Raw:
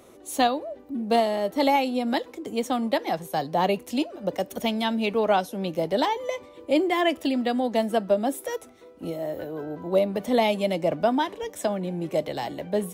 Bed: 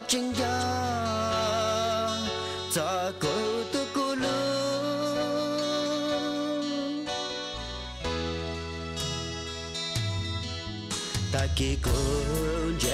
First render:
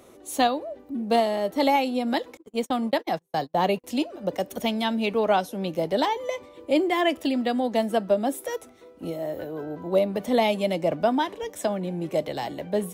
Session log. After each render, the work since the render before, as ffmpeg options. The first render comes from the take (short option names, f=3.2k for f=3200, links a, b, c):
-filter_complex "[0:a]asettb=1/sr,asplit=3[a][b][c];[a]atrim=end=2.374[d];[b]atrim=start=2.37:end=3.84,asetpts=PTS-STARTPTS,afade=t=in:d=0.004:c=qsin,afade=t=out:st=1.466:d=0.004:c=qsin,agate=range=-37dB:threshold=-32dB:ratio=16:release=100:detection=peak[e];[c]atrim=start=3.836[f];[d][e]acrossfade=d=0.004:c1=hsin:c2=qsin[g];[g][f]acrossfade=d=0.004:c1=qsin:c2=hsin"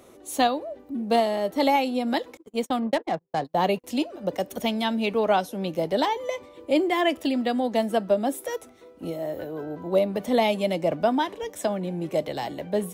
-filter_complex "[0:a]asettb=1/sr,asplit=3[a][b][c];[a]atrim=end=2.794[d];[b]atrim=start=2.79:end=3.45,asetpts=PTS-STARTPTS,afade=t=in:d=0.004:c=qsin,afade=t=out:st=0.656:d=0.004:c=qsin,adynamicsmooth=sensitivity=3:basefreq=1.1k[e];[c]atrim=start=3.446[f];[d][e]acrossfade=d=0.004:c1=hsin:c2=qsin[g];[g][f]acrossfade=d=0.004:c1=qsin:c2=hsin"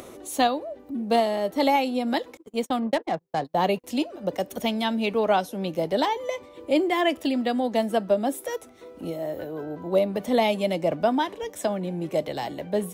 -af "acompressor=mode=upward:threshold=-35dB:ratio=2.5"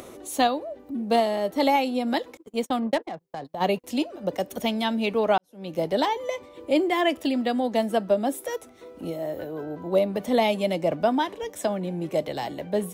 -filter_complex "[0:a]asplit=3[a][b][c];[a]afade=t=out:st=3.04:d=0.02[d];[b]acompressor=threshold=-31dB:ratio=4:attack=3.2:release=140:knee=1:detection=peak,afade=t=in:st=3.04:d=0.02,afade=t=out:st=3.6:d=0.02[e];[c]afade=t=in:st=3.6:d=0.02[f];[d][e][f]amix=inputs=3:normalize=0,asplit=2[g][h];[g]atrim=end=5.38,asetpts=PTS-STARTPTS,afade=t=out:st=5.376:d=0.004:c=hsin[i];[h]atrim=start=5.38,asetpts=PTS-STARTPTS,afade=t=in:d=0.4:c=qua[j];[i][j]concat=n=2:v=0:a=1"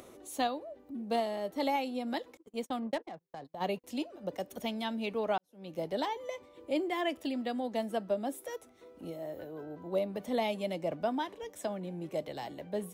-af "volume=-10dB"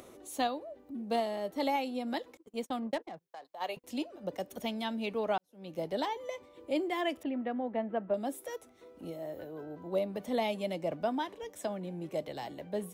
-filter_complex "[0:a]asettb=1/sr,asplit=3[a][b][c];[a]atrim=end=3.284[d];[b]atrim=start=3.28:end=3.77,asetpts=PTS-STARTPTS,afade=t=in:d=0.004:c=qsin,afade=t=out:st=0.486:d=0.004:c=qsin,highpass=630[e];[c]atrim=start=3.766[f];[d][e]acrossfade=d=0.004:c1=hsin:c2=qsin[g];[g][f]acrossfade=d=0.004:c1=qsin:c2=hsin,asettb=1/sr,asplit=3[h][i][j];[h]atrim=end=7.234[k];[i]atrim=start=7.23:end=8.14,asetpts=PTS-STARTPTS,afade=t=in:d=0.004:c=qsin,afade=t=out:st=0.906:d=0.004:c=qsin,lowpass=f=2.3k:w=0.5412,lowpass=f=2.3k:w=1.3066[l];[j]atrim=start=8.136[m];[k][l]acrossfade=d=0.004:c1=hsin:c2=qsin[n];[n][m]acrossfade=d=0.004:c1=qsin:c2=hsin"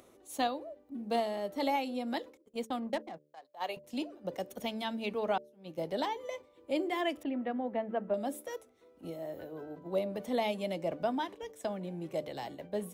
-af "agate=range=-7dB:threshold=-45dB:ratio=16:detection=peak,bandreject=f=74.14:t=h:w=4,bandreject=f=148.28:t=h:w=4,bandreject=f=222.42:t=h:w=4,bandreject=f=296.56:t=h:w=4,bandreject=f=370.7:t=h:w=4,bandreject=f=444.84:t=h:w=4,bandreject=f=518.98:t=h:w=4,bandreject=f=593.12:t=h:w=4"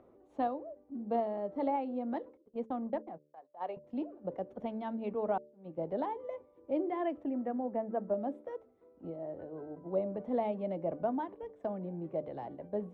-af "lowpass=1k"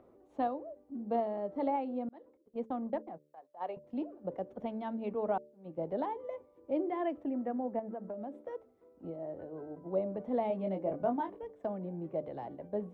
-filter_complex "[0:a]asettb=1/sr,asplit=3[a][b][c];[a]atrim=end=7.794[d];[b]atrim=start=7.79:end=8.43,asetpts=PTS-STARTPTS,afade=t=in:d=0.004:c=qsin,afade=t=out:st=0.636:d=0.004:c=qsin,acompressor=threshold=-37dB:ratio=6:attack=3.2:release=140:knee=1:detection=peak[e];[c]atrim=start=8.426[f];[d][e]acrossfade=d=0.004:c1=hsin:c2=qsin[g];[g][f]acrossfade=d=0.004:c1=qsin:c2=hsin,asettb=1/sr,asplit=3[h][i][j];[h]atrim=end=10.484[k];[i]atrim=start=10.48:end=11.39,asetpts=PTS-STARTPTS,afade=t=in:d=0.004:c=qsin,afade=t=out:st=0.906:d=0.004:c=qsin,asplit=2[l][m];[m]adelay=21,volume=-5dB[n];[l][n]amix=inputs=2:normalize=0,atrim=end_sample=40131[o];[j]atrim=start=11.386[p];[k][o]acrossfade=d=0.004:c1=hsin:c2=qsin[q];[q][p]acrossfade=d=0.004:c1=qsin:c2=hsin,asplit=2[r][s];[r]atrim=end=2.09,asetpts=PTS-STARTPTS,afade=t=out:st=2.086:d=0.004:c=hsin[t];[s]atrim=start=2.09,asetpts=PTS-STARTPTS,afade=t=in:d=0.49[u];[t][u]concat=n=2:v=0:a=1"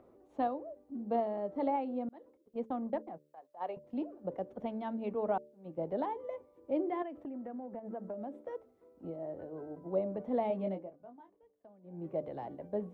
-filter_complex "[0:a]asettb=1/sr,asplit=3[a][b][c];[a]atrim=end=7.024[d];[b]atrim=start=7.02:end=7.9,asetpts=PTS-STARTPTS,afade=t=in:d=0.004:c=qsin,afade=t=out:st=0.876:d=0.004:c=qsin,acompressor=threshold=-39dB:ratio=6:attack=3.2:release=140:knee=1:detection=peak[e];[c]atrim=start=7.896[f];[d][e]acrossfade=d=0.004:c1=hsin:c2=qsin[g];[g][f]acrossfade=d=0.004:c1=qsin:c2=hsin,asplit=3[h][i][j];[h]atrim=end=10.91,asetpts=PTS-STARTPTS,afade=t=out:st=10.67:d=0.24:silence=0.0841395[k];[i]atrim=start=10.91:end=11.83,asetpts=PTS-STARTPTS,volume=-21.5dB[l];[j]atrim=start=11.83,asetpts=PTS-STARTPTS,afade=t=in:d=0.24:silence=0.0841395[m];[k][l][m]concat=n=3:v=0:a=1"